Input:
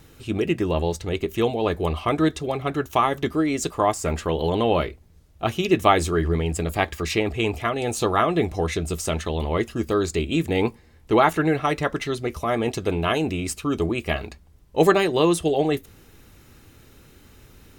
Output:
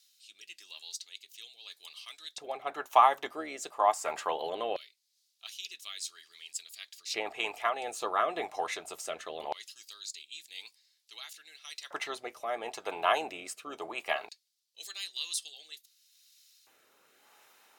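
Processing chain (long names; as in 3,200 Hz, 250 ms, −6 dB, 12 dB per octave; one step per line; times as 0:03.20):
sub-octave generator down 2 octaves, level −2 dB
auto-filter high-pass square 0.21 Hz 800–4,400 Hz
rotating-speaker cabinet horn 0.9 Hz
level −5.5 dB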